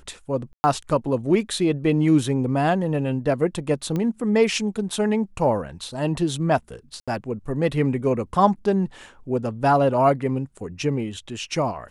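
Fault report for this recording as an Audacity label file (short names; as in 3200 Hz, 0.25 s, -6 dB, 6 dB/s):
0.530000	0.640000	gap 0.11 s
3.960000	3.960000	pop -15 dBFS
7.000000	7.080000	gap 76 ms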